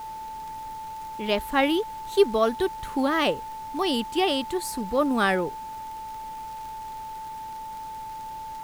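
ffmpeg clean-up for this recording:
ffmpeg -i in.wav -af "adeclick=threshold=4,bandreject=frequency=880:width=30,afftdn=noise_reduction=30:noise_floor=-37" out.wav

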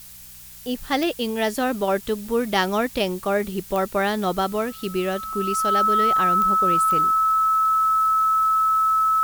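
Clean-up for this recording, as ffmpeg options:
ffmpeg -i in.wav -af "adeclick=threshold=4,bandreject=frequency=61.7:width_type=h:width=4,bandreject=frequency=123.4:width_type=h:width=4,bandreject=frequency=185.1:width_type=h:width=4,bandreject=frequency=1300:width=30,afftdn=noise_reduction=27:noise_floor=-41" out.wav

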